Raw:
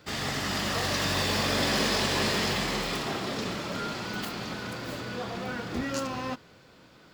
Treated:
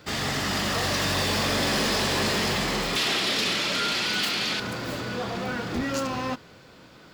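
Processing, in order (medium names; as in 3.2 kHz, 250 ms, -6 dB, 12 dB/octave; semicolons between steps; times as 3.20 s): 2.96–4.60 s: frequency weighting D; saturation -24.5 dBFS, distortion -14 dB; trim +5 dB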